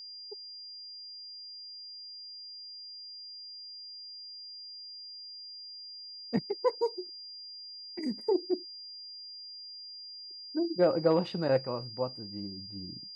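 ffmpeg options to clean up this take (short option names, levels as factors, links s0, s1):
-af "bandreject=f=4800:w=30"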